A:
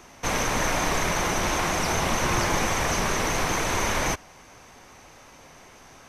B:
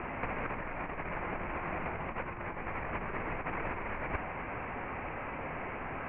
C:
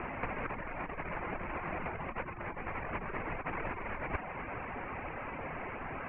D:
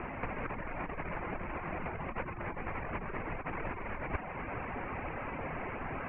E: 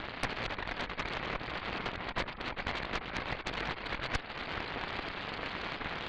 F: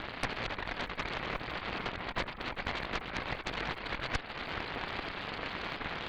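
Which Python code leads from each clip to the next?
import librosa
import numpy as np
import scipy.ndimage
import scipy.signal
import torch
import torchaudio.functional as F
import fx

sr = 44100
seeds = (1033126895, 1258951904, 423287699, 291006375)

y1 = scipy.signal.sosfilt(scipy.signal.butter(12, 2600.0, 'lowpass', fs=sr, output='sos'), x)
y1 = fx.over_compress(y1, sr, threshold_db=-33.0, ratio=-0.5)
y2 = fx.dereverb_blind(y1, sr, rt60_s=0.54)
y3 = fx.low_shelf(y2, sr, hz=430.0, db=3.5)
y3 = fx.rider(y3, sr, range_db=10, speed_s=0.5)
y3 = y3 * 10.0 ** (-1.0 / 20.0)
y4 = fx.lowpass_res(y3, sr, hz=2300.0, q=1.8)
y4 = fx.cheby_harmonics(y4, sr, harmonics=(3, 6), levels_db=(-12, -9), full_scale_db=-18.5)
y5 = fx.dmg_crackle(y4, sr, seeds[0], per_s=71.0, level_db=-52.0)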